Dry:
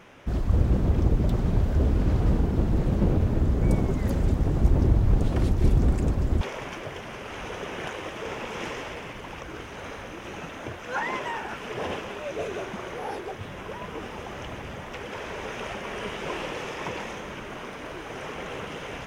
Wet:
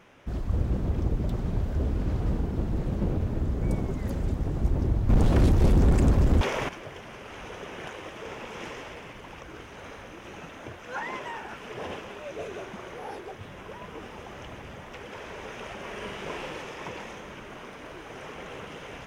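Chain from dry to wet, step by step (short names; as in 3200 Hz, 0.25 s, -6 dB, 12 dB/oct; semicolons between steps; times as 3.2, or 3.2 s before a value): 5.09–6.69 sine folder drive 7 dB, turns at -9.5 dBFS; 15.75–16.62 doubler 41 ms -4 dB; gain -5 dB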